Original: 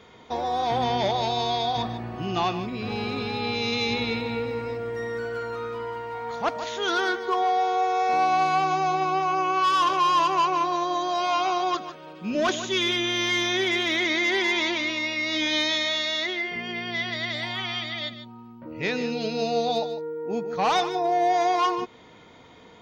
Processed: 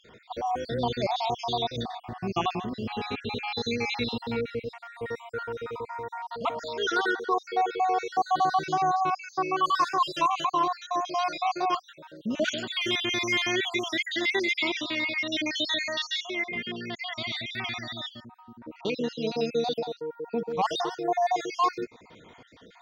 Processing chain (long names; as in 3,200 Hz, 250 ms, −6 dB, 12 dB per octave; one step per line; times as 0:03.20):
time-frequency cells dropped at random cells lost 54%